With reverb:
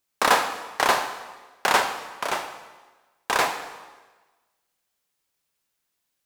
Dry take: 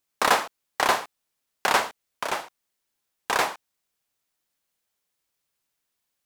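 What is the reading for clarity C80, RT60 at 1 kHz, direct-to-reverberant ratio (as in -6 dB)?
10.5 dB, 1.3 s, 7.0 dB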